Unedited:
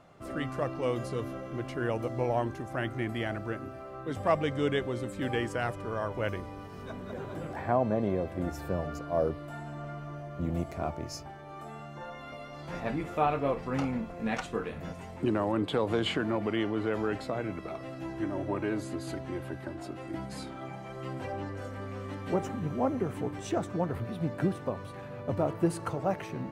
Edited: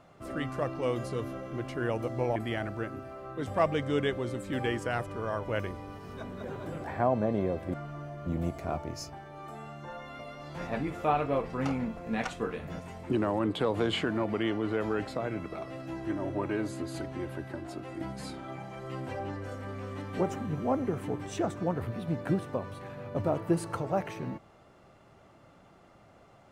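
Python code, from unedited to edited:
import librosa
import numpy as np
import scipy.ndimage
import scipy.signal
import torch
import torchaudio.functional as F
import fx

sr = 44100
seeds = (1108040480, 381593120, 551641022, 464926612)

y = fx.edit(x, sr, fx.cut(start_s=2.36, length_s=0.69),
    fx.cut(start_s=8.43, length_s=1.44), tone=tone)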